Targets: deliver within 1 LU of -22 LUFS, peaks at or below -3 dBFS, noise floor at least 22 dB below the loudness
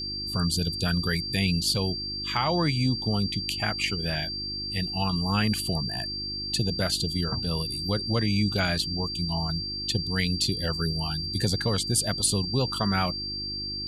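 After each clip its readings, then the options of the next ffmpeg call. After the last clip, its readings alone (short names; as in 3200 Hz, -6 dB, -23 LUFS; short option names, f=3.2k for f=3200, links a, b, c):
hum 50 Hz; harmonics up to 350 Hz; hum level -40 dBFS; steady tone 4700 Hz; tone level -31 dBFS; loudness -26.5 LUFS; peak -11.0 dBFS; loudness target -22.0 LUFS
-> -af "bandreject=f=50:t=h:w=4,bandreject=f=100:t=h:w=4,bandreject=f=150:t=h:w=4,bandreject=f=200:t=h:w=4,bandreject=f=250:t=h:w=4,bandreject=f=300:t=h:w=4,bandreject=f=350:t=h:w=4"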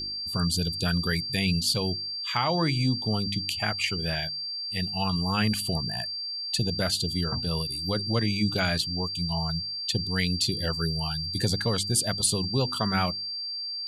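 hum none; steady tone 4700 Hz; tone level -31 dBFS
-> -af "bandreject=f=4.7k:w=30"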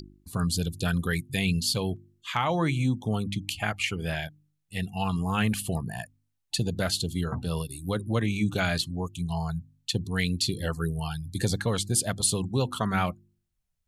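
steady tone none; loudness -28.5 LUFS; peak -11.5 dBFS; loudness target -22.0 LUFS
-> -af "volume=6.5dB"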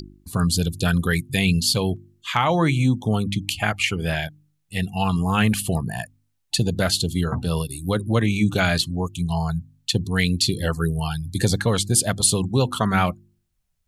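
loudness -22.0 LUFS; peak -5.0 dBFS; noise floor -71 dBFS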